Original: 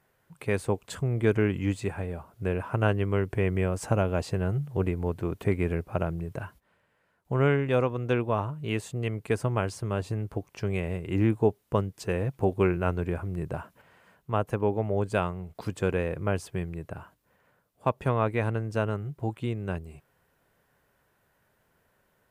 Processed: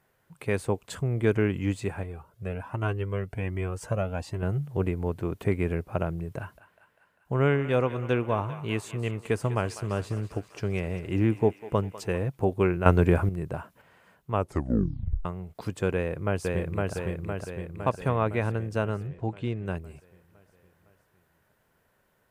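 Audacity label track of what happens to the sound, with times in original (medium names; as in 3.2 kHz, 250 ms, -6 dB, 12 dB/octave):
2.030000	4.430000	Shepard-style flanger rising 1.3 Hz
6.380000	12.180000	thinning echo 198 ms, feedback 71%, high-pass 620 Hz, level -13 dB
12.860000	13.290000	gain +9 dB
14.330000	14.330000	tape stop 0.92 s
15.930000	16.950000	echo throw 510 ms, feedback 60%, level -1.5 dB
19.070000	19.660000	low-pass 5.5 kHz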